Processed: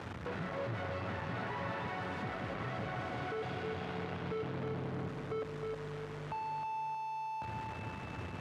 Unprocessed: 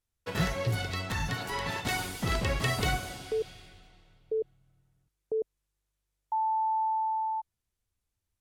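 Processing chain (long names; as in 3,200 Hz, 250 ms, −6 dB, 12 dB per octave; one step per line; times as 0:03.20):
sign of each sample alone
low-pass filter 1,600 Hz 12 dB per octave
in parallel at −11.5 dB: asymmetric clip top −47 dBFS
on the sum: high-pass filter 93 Hz 24 dB per octave
feedback echo with a high-pass in the loop 314 ms, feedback 38%, high-pass 150 Hz, level −4 dB
on a send at −11 dB: convolution reverb RT60 4.0 s, pre-delay 34 ms
on the sum: multiband upward and downward compressor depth 40%
level −5.5 dB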